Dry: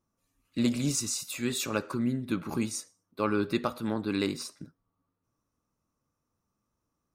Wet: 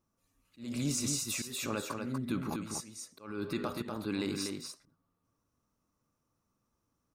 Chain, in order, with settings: limiter -24 dBFS, peak gain reduction 9.5 dB; auto swell 0.298 s; echo 0.243 s -5 dB

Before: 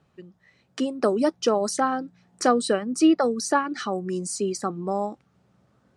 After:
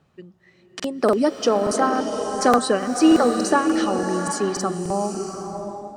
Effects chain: crackling interface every 0.29 s, samples 2048, repeat, from 0.75; bloom reverb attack 0.73 s, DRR 5 dB; gain +2.5 dB

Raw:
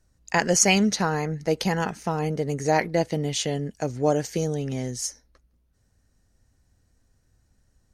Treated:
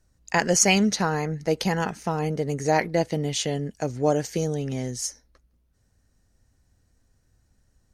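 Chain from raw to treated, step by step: hard clip -8 dBFS, distortion -36 dB

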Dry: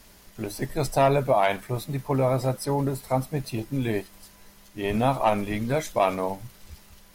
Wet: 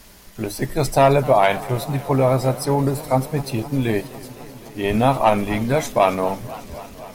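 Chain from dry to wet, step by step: warbling echo 0.255 s, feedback 80%, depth 161 cents, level -19 dB; gain +6 dB

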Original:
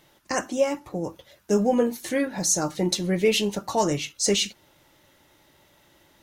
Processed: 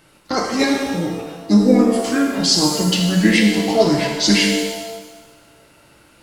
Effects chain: formant shift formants -5 st; shimmer reverb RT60 1.2 s, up +7 st, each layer -8 dB, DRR 0 dB; gain +5 dB

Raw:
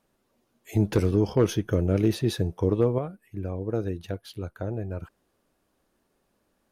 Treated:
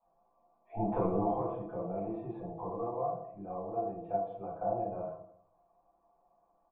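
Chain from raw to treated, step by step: comb 6 ms, depth 78%; 1.32–3.96 compressor 2:1, threshold -32 dBFS, peak gain reduction 10.5 dB; vocal tract filter a; echo 0.205 s -23 dB; reverb RT60 0.65 s, pre-delay 3 ms, DRR -10.5 dB

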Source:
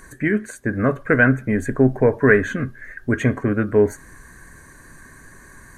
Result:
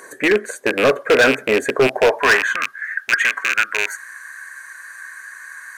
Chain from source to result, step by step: rattling part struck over -23 dBFS, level -12 dBFS; high-pass sweep 480 Hz -> 1500 Hz, 1.76–2.89; overloaded stage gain 14.5 dB; gain +5.5 dB

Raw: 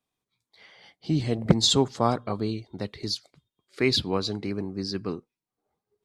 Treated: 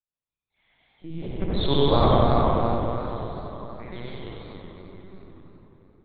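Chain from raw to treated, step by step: Doppler pass-by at 1.92, 17 m/s, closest 3 m; reverb RT60 4.2 s, pre-delay 48 ms, DRR -7 dB; LPC vocoder at 8 kHz pitch kept; warbling echo 94 ms, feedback 52%, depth 129 cents, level -4.5 dB

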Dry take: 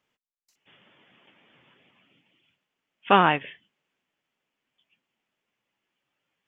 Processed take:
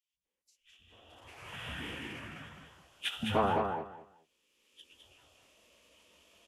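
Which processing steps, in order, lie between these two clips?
recorder AGC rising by 19 dB/s; envelope phaser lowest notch 210 Hz, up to 2000 Hz, full sweep at -24.5 dBFS; in parallel at -11.5 dB: bit-crush 6-bit; on the sum: three bands offset in time highs, lows, mids 0.13/0.25 s, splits 220/2300 Hz; soft clip -9 dBFS, distortion -14 dB; formant-preserving pitch shift -10.5 st; on a send: feedback echo 0.209 s, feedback 20%, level -5 dB; on the sum: gain -7 dB

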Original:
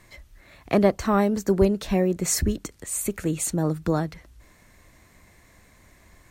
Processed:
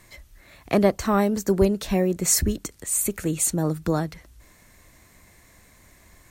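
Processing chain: high shelf 5800 Hz +7 dB

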